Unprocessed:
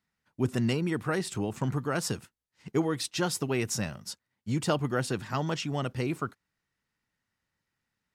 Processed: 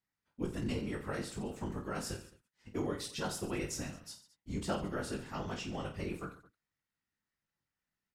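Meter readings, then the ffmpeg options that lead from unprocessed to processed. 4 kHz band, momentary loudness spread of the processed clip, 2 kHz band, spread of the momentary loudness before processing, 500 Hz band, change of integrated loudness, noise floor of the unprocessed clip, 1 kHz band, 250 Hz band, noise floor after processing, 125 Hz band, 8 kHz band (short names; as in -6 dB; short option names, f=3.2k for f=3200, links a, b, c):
-8.5 dB, 9 LU, -8.5 dB, 8 LU, -8.0 dB, -8.5 dB, -85 dBFS, -8.0 dB, -8.0 dB, under -85 dBFS, -10.5 dB, -8.5 dB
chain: -af "afftfilt=real='hypot(re,im)*cos(2*PI*random(0))':imag='hypot(re,im)*sin(2*PI*random(1))':win_size=512:overlap=0.75,aecho=1:1:20|48|87.2|142.1|218.9:0.631|0.398|0.251|0.158|0.1,volume=-4.5dB"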